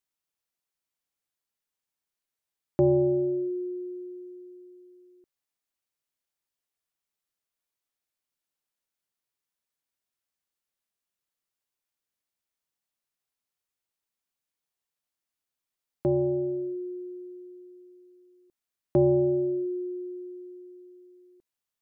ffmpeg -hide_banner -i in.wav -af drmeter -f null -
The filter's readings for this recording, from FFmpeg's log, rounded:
Channel 1: DR: 10.2
Overall DR: 10.2